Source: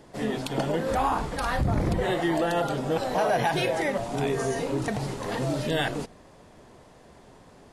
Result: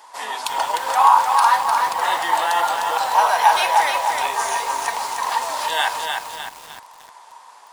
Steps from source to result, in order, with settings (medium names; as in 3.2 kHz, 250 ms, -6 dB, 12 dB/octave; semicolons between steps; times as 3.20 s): resonant high-pass 950 Hz, resonance Q 8; treble shelf 2.4 kHz +11.5 dB; reverberation RT60 0.55 s, pre-delay 3 ms, DRR 13.5 dB; bit-crushed delay 303 ms, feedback 55%, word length 6-bit, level -4 dB